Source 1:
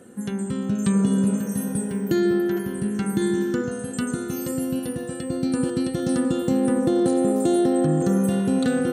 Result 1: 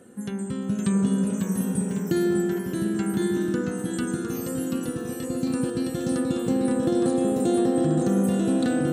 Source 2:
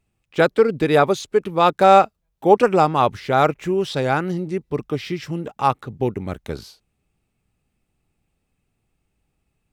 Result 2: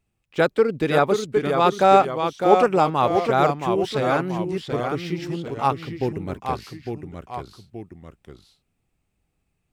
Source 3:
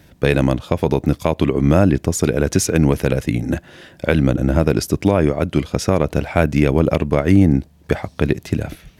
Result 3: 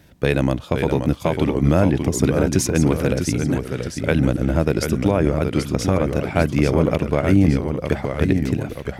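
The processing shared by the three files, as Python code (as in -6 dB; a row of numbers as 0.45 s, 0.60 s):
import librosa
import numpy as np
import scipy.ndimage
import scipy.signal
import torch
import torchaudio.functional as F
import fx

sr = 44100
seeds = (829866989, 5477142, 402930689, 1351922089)

y = fx.echo_pitch(x, sr, ms=497, semitones=-1, count=2, db_per_echo=-6.0)
y = y * 10.0 ** (-3.0 / 20.0)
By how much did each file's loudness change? -2.0 LU, -2.0 LU, -2.0 LU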